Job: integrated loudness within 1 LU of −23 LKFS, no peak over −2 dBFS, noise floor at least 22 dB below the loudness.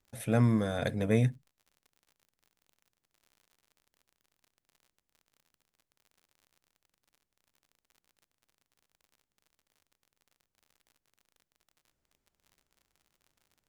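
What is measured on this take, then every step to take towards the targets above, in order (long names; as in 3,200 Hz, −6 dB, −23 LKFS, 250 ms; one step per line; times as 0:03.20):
crackle rate 53 per second; integrated loudness −29.0 LKFS; sample peak −13.0 dBFS; target loudness −23.0 LKFS
→ click removal
level +6 dB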